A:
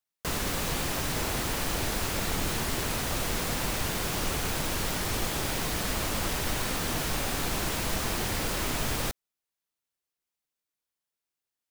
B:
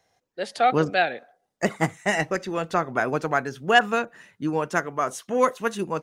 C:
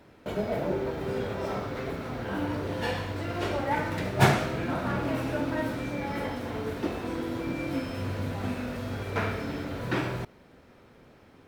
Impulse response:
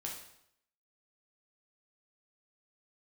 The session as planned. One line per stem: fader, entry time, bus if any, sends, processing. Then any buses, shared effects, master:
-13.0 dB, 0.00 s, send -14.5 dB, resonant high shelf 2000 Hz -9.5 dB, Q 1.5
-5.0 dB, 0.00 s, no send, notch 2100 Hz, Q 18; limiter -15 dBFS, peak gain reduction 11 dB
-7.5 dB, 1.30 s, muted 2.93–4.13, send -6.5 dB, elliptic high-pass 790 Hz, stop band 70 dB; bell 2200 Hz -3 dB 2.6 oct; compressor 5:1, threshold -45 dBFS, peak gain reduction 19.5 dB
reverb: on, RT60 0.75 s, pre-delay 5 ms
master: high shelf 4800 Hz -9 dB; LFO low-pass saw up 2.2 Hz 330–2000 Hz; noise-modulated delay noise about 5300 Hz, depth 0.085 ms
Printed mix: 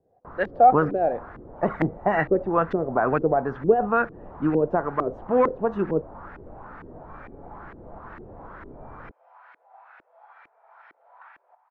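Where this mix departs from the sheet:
stem A: send off; stem B -5.0 dB -> +3.0 dB; master: missing noise-modulated delay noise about 5300 Hz, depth 0.085 ms

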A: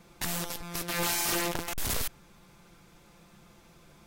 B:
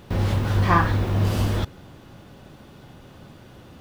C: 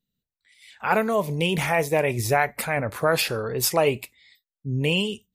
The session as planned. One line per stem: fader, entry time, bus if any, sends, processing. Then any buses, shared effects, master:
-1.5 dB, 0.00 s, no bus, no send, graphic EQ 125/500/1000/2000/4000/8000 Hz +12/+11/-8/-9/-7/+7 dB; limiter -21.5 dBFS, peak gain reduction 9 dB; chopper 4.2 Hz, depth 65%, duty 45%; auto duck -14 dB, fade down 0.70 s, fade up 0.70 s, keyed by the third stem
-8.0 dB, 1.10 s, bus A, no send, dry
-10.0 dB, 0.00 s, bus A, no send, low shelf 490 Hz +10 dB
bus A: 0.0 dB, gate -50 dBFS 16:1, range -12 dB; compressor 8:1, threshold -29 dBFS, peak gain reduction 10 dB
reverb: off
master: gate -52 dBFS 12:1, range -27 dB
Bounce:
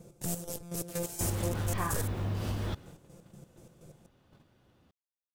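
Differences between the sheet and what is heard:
stem C: muted; master: missing gate -52 dBFS 12:1, range -27 dB

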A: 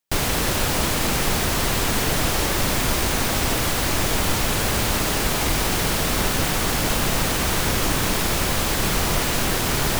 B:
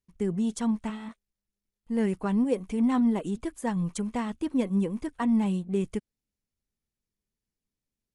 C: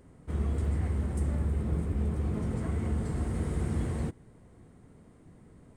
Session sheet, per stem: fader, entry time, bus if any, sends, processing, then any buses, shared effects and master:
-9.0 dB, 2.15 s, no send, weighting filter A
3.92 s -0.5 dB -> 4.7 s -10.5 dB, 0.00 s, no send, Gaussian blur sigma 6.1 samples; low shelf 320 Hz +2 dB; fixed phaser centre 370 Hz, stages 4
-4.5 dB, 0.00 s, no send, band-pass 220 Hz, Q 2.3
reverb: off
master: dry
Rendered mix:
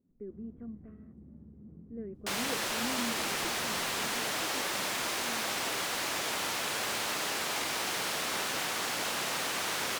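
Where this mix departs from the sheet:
stem B -0.5 dB -> -12.5 dB; stem C -4.5 dB -> -13.0 dB

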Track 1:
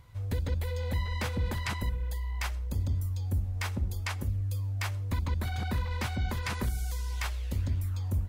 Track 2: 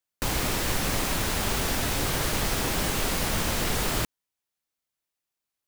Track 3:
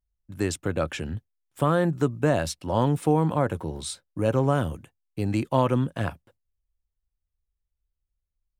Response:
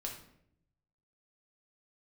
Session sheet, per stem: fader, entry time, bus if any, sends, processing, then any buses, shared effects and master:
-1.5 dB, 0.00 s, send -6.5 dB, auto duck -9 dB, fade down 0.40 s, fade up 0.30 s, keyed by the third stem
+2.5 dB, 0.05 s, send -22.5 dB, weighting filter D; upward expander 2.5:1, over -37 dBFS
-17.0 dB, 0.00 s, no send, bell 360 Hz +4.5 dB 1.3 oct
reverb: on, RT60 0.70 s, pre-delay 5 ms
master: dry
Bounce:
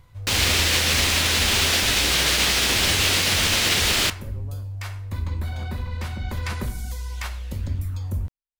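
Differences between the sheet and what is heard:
stem 3 -17.0 dB -> -27.0 dB; reverb return +6.0 dB

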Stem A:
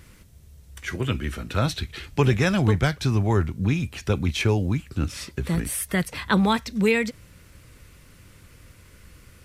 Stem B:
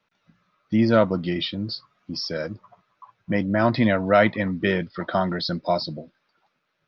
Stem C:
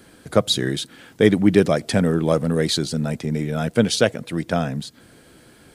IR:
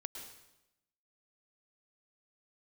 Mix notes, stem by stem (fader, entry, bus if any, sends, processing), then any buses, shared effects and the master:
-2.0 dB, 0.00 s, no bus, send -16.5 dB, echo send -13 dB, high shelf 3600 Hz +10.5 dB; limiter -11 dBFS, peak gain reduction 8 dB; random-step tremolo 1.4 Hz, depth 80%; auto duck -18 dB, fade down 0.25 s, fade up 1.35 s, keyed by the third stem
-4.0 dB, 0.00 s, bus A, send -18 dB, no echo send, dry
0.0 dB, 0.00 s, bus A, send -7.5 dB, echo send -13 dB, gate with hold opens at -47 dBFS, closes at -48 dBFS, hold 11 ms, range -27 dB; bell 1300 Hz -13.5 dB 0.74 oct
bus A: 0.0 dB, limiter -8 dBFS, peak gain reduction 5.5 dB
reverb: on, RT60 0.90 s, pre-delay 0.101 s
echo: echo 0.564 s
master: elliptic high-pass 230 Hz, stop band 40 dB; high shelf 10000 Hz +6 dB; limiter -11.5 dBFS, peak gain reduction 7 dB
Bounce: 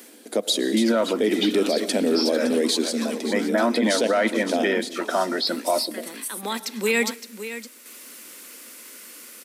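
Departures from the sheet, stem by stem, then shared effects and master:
stem A -2.0 dB -> +5.5 dB; stem B -4.0 dB -> +3.5 dB

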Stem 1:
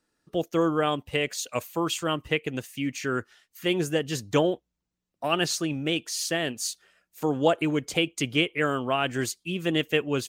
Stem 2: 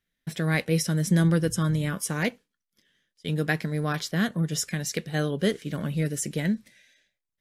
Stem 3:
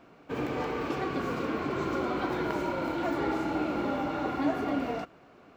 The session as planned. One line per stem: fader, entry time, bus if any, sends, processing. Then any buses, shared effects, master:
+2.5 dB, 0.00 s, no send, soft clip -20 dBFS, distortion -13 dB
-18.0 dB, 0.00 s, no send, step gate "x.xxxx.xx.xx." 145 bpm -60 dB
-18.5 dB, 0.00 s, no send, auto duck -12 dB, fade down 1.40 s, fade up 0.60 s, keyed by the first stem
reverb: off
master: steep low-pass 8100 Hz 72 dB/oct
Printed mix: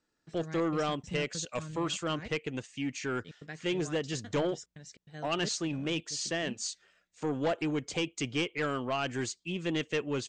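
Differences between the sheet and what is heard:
stem 1 +2.5 dB -> -4.0 dB; stem 3: muted

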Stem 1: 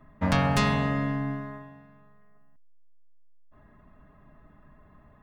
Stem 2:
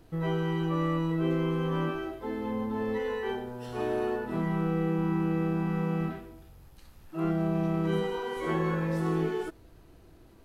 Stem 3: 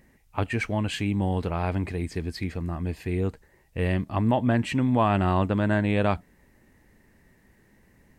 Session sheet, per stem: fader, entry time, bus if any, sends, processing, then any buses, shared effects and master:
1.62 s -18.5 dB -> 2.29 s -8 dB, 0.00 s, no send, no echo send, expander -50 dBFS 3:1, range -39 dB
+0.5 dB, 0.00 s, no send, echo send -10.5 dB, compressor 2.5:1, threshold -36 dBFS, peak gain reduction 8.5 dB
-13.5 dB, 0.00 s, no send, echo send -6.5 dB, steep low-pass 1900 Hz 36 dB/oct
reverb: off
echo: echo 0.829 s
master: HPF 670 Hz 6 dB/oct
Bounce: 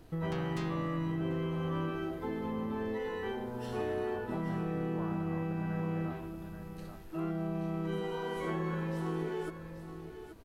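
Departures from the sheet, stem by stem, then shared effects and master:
stem 3 -13.5 dB -> -24.0 dB; master: missing HPF 670 Hz 6 dB/oct

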